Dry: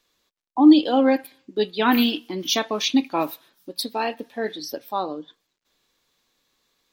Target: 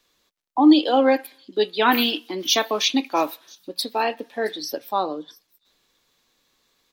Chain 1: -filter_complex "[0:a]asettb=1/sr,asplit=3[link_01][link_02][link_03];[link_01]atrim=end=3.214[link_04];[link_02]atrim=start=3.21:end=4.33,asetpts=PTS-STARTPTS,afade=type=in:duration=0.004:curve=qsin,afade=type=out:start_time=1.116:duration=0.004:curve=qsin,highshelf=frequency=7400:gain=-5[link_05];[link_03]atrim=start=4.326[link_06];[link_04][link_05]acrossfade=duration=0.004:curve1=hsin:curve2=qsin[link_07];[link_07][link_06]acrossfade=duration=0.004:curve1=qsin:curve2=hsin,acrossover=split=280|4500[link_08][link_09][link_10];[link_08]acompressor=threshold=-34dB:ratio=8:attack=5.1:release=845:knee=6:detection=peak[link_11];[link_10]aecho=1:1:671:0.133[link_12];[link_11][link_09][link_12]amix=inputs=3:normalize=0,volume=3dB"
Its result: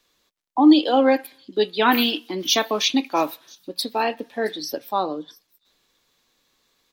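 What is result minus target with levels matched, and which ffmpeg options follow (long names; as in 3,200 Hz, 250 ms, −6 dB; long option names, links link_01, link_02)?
downward compressor: peak gain reduction −7.5 dB
-filter_complex "[0:a]asettb=1/sr,asplit=3[link_01][link_02][link_03];[link_01]atrim=end=3.214[link_04];[link_02]atrim=start=3.21:end=4.33,asetpts=PTS-STARTPTS,afade=type=in:duration=0.004:curve=qsin,afade=type=out:start_time=1.116:duration=0.004:curve=qsin,highshelf=frequency=7400:gain=-5[link_05];[link_03]atrim=start=4.326[link_06];[link_04][link_05]acrossfade=duration=0.004:curve1=hsin:curve2=qsin[link_07];[link_07][link_06]acrossfade=duration=0.004:curve1=qsin:curve2=hsin,acrossover=split=280|4500[link_08][link_09][link_10];[link_08]acompressor=threshold=-42.5dB:ratio=8:attack=5.1:release=845:knee=6:detection=peak[link_11];[link_10]aecho=1:1:671:0.133[link_12];[link_11][link_09][link_12]amix=inputs=3:normalize=0,volume=3dB"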